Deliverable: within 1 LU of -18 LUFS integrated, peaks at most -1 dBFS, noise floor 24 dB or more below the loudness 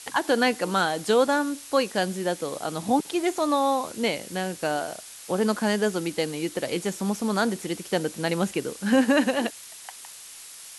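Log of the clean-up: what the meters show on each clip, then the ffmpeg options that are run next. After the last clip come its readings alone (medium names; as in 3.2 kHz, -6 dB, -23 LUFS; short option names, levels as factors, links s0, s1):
noise floor -44 dBFS; noise floor target -50 dBFS; loudness -25.5 LUFS; peak level -9.5 dBFS; loudness target -18.0 LUFS
-> -af "afftdn=nr=6:nf=-44"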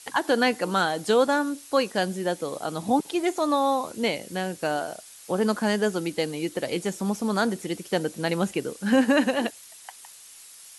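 noise floor -47 dBFS; noise floor target -50 dBFS
-> -af "afftdn=nr=6:nf=-47"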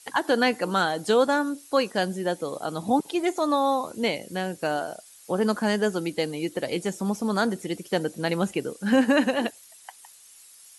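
noise floor -51 dBFS; loudness -25.5 LUFS; peak level -9.5 dBFS; loudness target -18.0 LUFS
-> -af "volume=2.37"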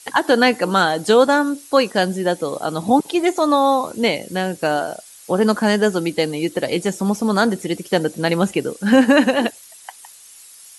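loudness -18.0 LUFS; peak level -2.0 dBFS; noise floor -44 dBFS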